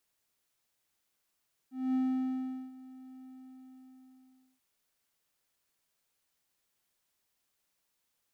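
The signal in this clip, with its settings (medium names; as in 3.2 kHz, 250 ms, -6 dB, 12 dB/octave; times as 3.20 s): ADSR triangle 259 Hz, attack 230 ms, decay 772 ms, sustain -21 dB, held 1.53 s, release 1360 ms -24 dBFS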